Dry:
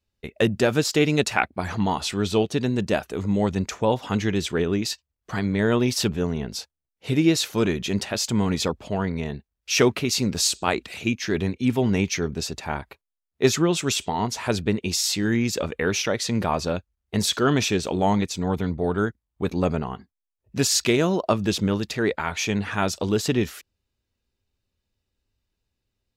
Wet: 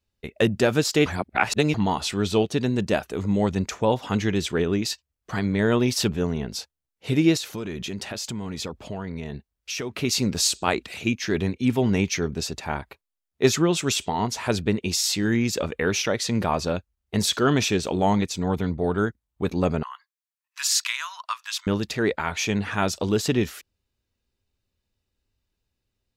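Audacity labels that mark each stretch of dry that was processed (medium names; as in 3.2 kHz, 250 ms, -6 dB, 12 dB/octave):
1.060000	1.740000	reverse
7.370000	9.990000	compression 5:1, threshold -28 dBFS
19.830000	21.670000	Chebyshev high-pass 1 kHz, order 5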